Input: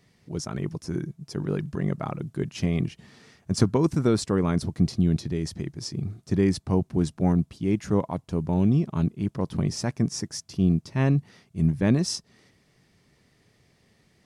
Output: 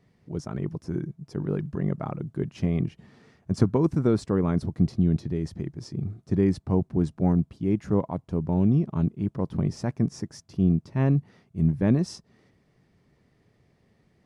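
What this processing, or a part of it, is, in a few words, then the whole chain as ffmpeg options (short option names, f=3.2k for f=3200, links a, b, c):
through cloth: -af "highshelf=f=2.2k:g=-13"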